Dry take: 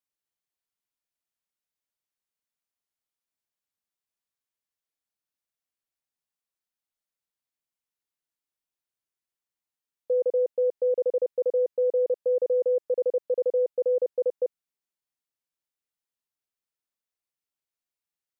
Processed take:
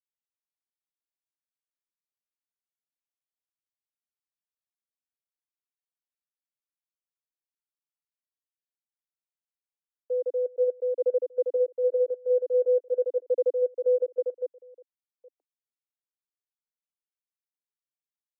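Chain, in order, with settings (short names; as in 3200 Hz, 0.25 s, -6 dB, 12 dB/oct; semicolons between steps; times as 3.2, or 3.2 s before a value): reverse delay 0.55 s, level -10 dB; steep high-pass 270 Hz 96 dB/oct; upward expander 2.5:1, over -31 dBFS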